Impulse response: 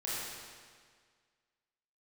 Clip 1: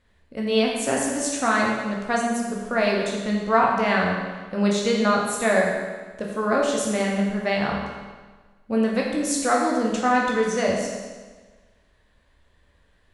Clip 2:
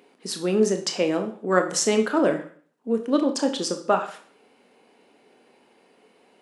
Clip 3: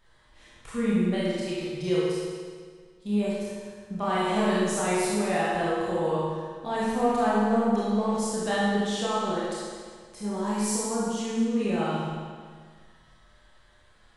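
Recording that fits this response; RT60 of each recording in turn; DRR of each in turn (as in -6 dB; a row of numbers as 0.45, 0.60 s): 3; 1.4, 0.45, 1.8 s; -2.5, 5.5, -8.5 dB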